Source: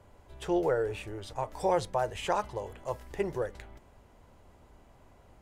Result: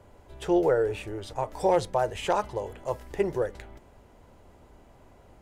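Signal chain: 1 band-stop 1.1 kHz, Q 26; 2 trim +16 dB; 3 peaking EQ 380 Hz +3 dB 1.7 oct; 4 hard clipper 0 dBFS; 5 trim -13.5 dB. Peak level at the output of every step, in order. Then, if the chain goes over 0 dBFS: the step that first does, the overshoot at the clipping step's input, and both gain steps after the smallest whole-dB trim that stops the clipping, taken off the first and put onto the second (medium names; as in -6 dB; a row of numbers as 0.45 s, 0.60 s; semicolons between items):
-14.0 dBFS, +2.0 dBFS, +3.5 dBFS, 0.0 dBFS, -13.5 dBFS; step 2, 3.5 dB; step 2 +12 dB, step 5 -9.5 dB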